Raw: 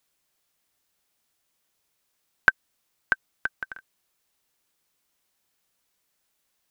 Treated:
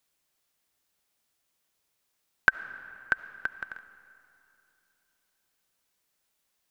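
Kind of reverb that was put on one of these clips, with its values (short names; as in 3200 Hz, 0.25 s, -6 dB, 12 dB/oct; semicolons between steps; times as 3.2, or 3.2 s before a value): digital reverb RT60 2.9 s, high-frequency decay 0.7×, pre-delay 30 ms, DRR 14 dB; gain -2.5 dB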